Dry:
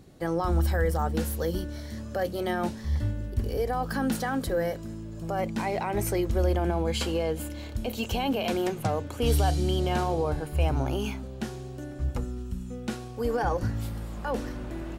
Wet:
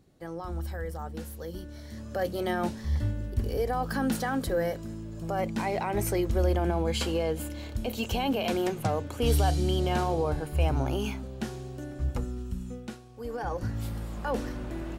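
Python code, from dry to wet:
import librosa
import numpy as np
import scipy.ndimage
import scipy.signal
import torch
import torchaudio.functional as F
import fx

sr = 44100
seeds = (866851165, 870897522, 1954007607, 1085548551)

y = fx.gain(x, sr, db=fx.line((1.45, -10.0), (2.25, -0.5), (12.7, -0.5), (13.03, -12.0), (13.91, 0.0)))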